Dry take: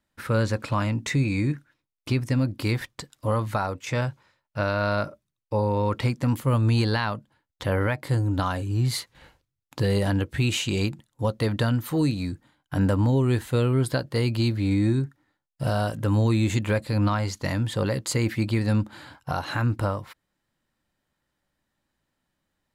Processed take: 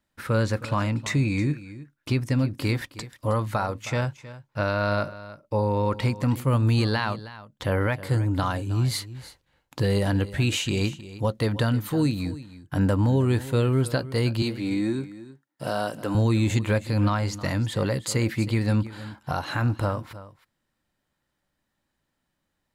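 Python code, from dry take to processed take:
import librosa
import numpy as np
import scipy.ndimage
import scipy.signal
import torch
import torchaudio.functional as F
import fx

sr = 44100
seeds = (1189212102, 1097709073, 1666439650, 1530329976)

p1 = fx.highpass(x, sr, hz=230.0, slope=12, at=(14.42, 16.15))
y = p1 + fx.echo_single(p1, sr, ms=316, db=-16.0, dry=0)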